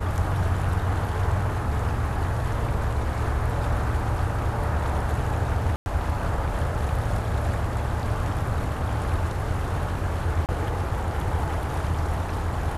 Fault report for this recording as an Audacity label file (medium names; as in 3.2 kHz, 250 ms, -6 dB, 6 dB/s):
5.760000	5.860000	dropout 101 ms
10.460000	10.490000	dropout 28 ms